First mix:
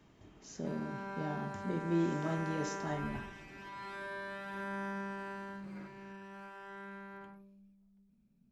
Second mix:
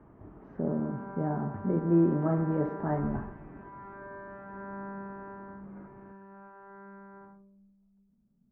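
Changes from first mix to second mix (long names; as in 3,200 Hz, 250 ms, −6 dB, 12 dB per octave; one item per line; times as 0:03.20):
speech +8.5 dB
master: add low-pass filter 1,400 Hz 24 dB per octave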